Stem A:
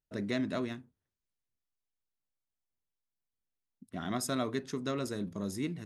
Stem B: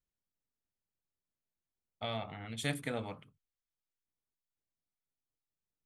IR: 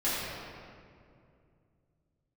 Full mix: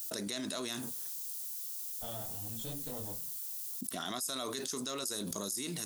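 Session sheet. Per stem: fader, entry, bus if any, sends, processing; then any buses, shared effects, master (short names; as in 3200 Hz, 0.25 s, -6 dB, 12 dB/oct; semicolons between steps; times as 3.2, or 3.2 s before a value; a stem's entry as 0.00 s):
-1.0 dB, 0.00 s, no send, differentiator; fast leveller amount 70%
-10.5 dB, 0.00 s, no send, minimum comb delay 0.3 ms; detuned doubles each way 28 cents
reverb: off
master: bell 2100 Hz -12.5 dB 1.3 oct; fast leveller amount 70%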